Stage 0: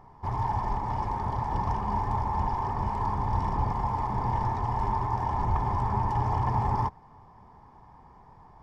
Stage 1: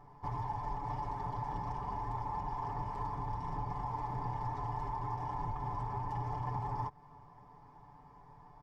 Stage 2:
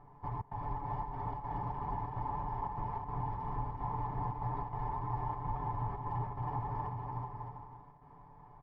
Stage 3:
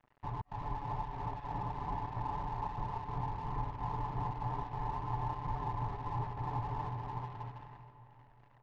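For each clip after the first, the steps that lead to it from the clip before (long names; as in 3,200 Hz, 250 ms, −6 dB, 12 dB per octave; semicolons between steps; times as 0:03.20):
downward compressor 4 to 1, threshold −31 dBFS, peak gain reduction 9.5 dB; comb filter 6.9 ms, depth 88%; level −6.5 dB
gate pattern "xxxx.xxxxx.xx.xx" 146 BPM −60 dB; high-frequency loss of the air 340 metres; bouncing-ball delay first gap 370 ms, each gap 0.65×, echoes 5
dead-zone distortion −52 dBFS; high-frequency loss of the air 120 metres; convolution reverb RT60 3.5 s, pre-delay 202 ms, DRR 12 dB; level +1 dB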